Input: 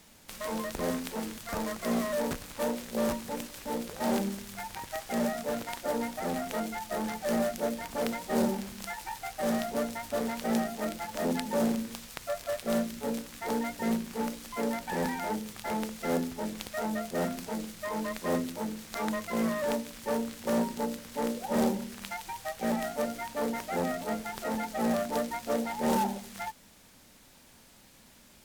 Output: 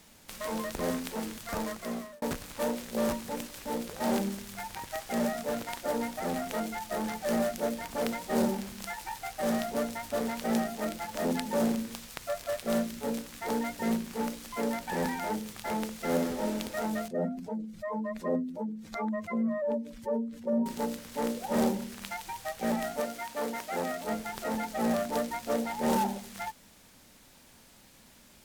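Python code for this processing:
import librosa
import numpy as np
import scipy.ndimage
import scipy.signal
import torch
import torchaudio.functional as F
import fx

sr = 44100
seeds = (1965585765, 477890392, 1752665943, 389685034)

y = fx.reverb_throw(x, sr, start_s=16.1, length_s=0.42, rt60_s=1.2, drr_db=0.5)
y = fx.spec_expand(y, sr, power=1.9, at=(17.08, 20.66))
y = fx.low_shelf(y, sr, hz=210.0, db=-11.0, at=(23.0, 24.04))
y = fx.edit(y, sr, fx.fade_out_span(start_s=1.6, length_s=0.62), tone=tone)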